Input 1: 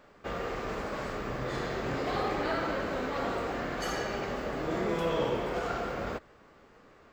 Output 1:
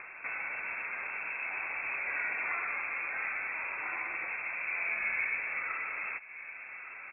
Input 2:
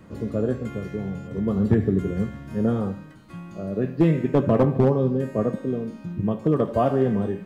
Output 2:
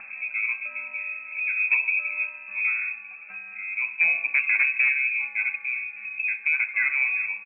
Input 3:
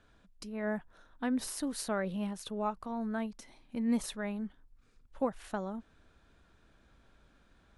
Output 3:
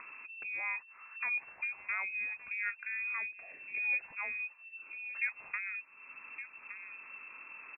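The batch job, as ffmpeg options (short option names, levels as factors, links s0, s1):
-filter_complex "[0:a]asplit=2[s0][s1];[s1]adelay=1166,volume=0.0891,highshelf=f=4000:g=-26.2[s2];[s0][s2]amix=inputs=2:normalize=0,acompressor=mode=upward:threshold=0.0316:ratio=2.5,lowpass=f=2300:t=q:w=0.5098,lowpass=f=2300:t=q:w=0.6013,lowpass=f=2300:t=q:w=0.9,lowpass=f=2300:t=q:w=2.563,afreqshift=-2700,volume=0.668"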